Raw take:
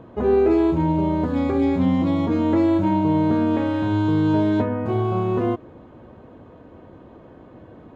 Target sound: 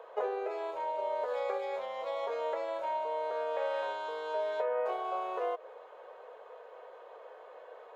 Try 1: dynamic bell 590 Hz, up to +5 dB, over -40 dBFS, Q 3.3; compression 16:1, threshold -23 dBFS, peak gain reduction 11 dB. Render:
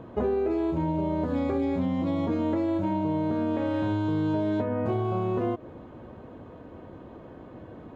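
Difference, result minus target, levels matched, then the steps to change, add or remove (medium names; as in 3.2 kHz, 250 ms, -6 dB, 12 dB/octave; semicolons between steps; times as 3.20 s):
500 Hz band -4.0 dB
add after compression: elliptic high-pass 460 Hz, stop band 40 dB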